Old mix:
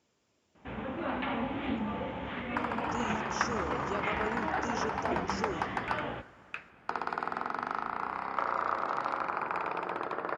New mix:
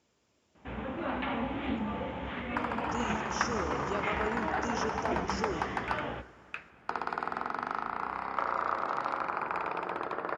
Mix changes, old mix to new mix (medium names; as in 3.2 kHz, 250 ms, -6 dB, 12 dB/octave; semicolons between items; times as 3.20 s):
speech: send +9.5 dB; master: add peaking EQ 63 Hz +6.5 dB 0.27 oct